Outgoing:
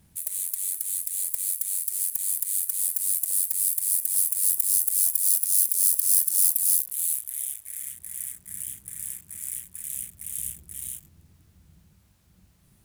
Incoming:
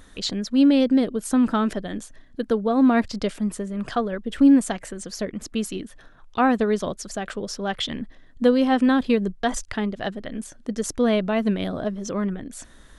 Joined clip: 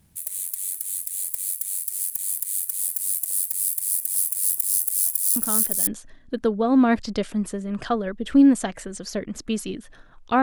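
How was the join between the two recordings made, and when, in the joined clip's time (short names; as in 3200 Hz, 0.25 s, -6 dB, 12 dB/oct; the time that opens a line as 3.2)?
outgoing
5.36 add incoming from 1.42 s 0.51 s -8.5 dB
5.87 switch to incoming from 1.93 s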